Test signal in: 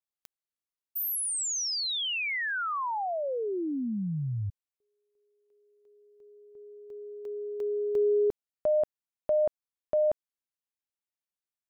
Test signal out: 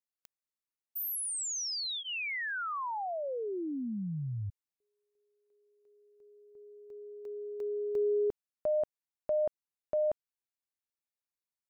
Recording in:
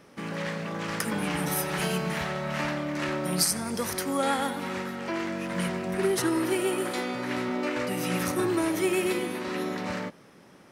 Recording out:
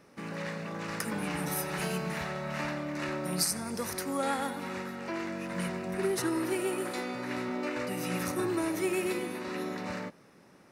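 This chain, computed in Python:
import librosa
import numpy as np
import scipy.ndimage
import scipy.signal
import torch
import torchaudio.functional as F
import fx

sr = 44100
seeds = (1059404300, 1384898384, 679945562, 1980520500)

y = fx.notch(x, sr, hz=3200.0, q=8.8)
y = y * librosa.db_to_amplitude(-4.5)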